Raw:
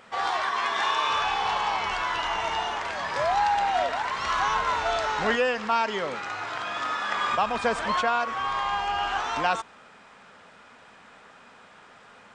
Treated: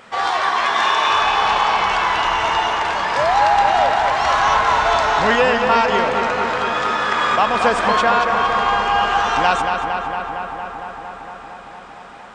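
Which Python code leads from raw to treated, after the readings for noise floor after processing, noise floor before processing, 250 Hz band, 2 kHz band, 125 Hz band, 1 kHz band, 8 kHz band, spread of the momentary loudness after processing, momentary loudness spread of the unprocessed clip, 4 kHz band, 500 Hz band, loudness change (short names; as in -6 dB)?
-37 dBFS, -52 dBFS, +10.0 dB, +9.5 dB, +11.0 dB, +10.0 dB, +8.0 dB, 13 LU, 6 LU, +8.5 dB, +10.0 dB, +9.5 dB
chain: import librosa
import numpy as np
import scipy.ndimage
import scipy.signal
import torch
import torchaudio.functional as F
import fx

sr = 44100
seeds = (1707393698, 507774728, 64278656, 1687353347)

y = fx.echo_filtered(x, sr, ms=229, feedback_pct=81, hz=3900.0, wet_db=-5.0)
y = y * 10.0 ** (7.5 / 20.0)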